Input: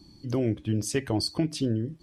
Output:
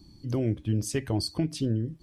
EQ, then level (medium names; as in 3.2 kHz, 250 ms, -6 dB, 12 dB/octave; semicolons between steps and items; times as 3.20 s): bass shelf 150 Hz +8 dB; treble shelf 12 kHz +7 dB; -3.5 dB